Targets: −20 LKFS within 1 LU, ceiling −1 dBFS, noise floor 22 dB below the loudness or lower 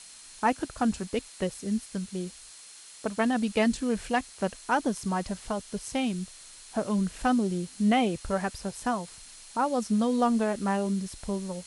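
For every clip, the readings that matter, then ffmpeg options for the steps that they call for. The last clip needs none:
interfering tone 4,200 Hz; level of the tone −57 dBFS; background noise floor −49 dBFS; target noise floor −51 dBFS; integrated loudness −29.0 LKFS; sample peak −11.0 dBFS; target loudness −20.0 LKFS
→ -af "bandreject=frequency=4200:width=30"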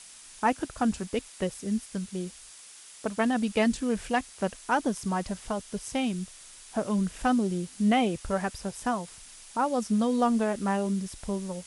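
interfering tone none found; background noise floor −49 dBFS; target noise floor −51 dBFS
→ -af "afftdn=noise_reduction=6:noise_floor=-49"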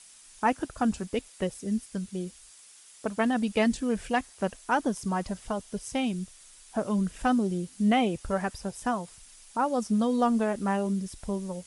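background noise floor −53 dBFS; integrated loudness −29.0 LKFS; sample peak −11.0 dBFS; target loudness −20.0 LKFS
→ -af "volume=9dB"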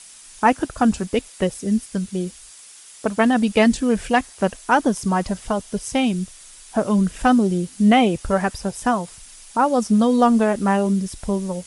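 integrated loudness −20.0 LKFS; sample peak −2.0 dBFS; background noise floor −44 dBFS

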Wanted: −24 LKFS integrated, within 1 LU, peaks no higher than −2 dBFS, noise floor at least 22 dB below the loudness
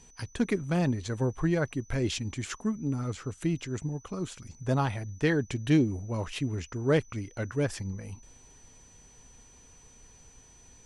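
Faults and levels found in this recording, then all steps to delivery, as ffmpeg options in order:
interfering tone 6,000 Hz; level of the tone −56 dBFS; integrated loudness −30.5 LKFS; sample peak −13.0 dBFS; target loudness −24.0 LKFS
→ -af "bandreject=frequency=6000:width=30"
-af "volume=6.5dB"

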